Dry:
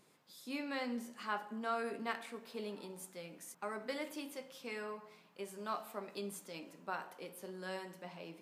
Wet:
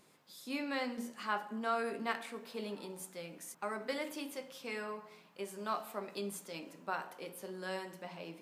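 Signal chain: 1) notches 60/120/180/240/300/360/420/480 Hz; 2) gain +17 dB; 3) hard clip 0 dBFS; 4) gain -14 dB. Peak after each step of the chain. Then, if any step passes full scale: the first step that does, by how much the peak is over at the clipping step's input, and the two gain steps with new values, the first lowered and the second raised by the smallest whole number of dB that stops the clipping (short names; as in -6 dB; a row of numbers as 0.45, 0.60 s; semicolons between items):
-21.5, -4.5, -4.5, -18.5 dBFS; no overload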